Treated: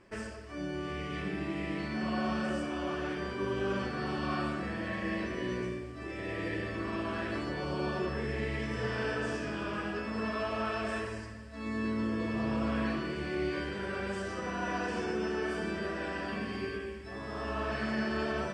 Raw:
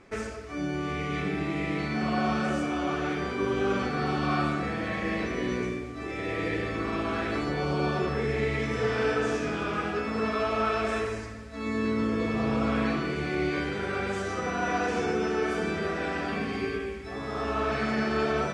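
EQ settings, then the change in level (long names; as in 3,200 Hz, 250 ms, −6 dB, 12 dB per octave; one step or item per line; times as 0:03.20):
EQ curve with evenly spaced ripples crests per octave 1.3, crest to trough 7 dB
−6.0 dB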